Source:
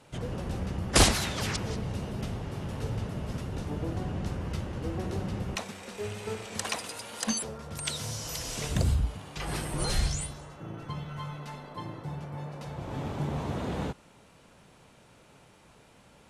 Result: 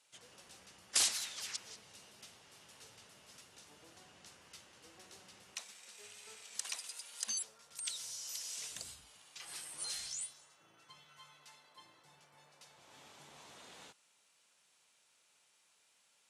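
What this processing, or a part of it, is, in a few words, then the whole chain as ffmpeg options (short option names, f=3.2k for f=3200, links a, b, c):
piezo pickup straight into a mixer: -af "lowpass=8.7k,aderivative,volume=-2.5dB"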